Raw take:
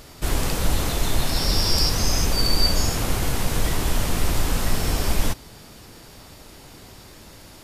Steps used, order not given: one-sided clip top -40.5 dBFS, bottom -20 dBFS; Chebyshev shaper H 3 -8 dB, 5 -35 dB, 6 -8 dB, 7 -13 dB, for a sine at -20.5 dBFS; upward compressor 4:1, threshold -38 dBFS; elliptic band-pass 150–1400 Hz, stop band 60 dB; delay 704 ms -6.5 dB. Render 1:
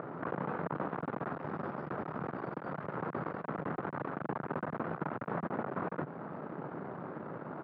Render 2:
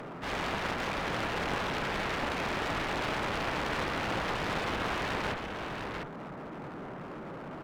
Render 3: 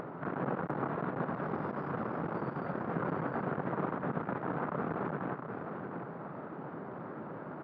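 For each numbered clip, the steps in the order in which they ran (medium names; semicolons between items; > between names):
delay > one-sided clip > upward compressor > Chebyshev shaper > elliptic band-pass; elliptic band-pass > upward compressor > Chebyshev shaper > delay > one-sided clip; Chebyshev shaper > one-sided clip > elliptic band-pass > upward compressor > delay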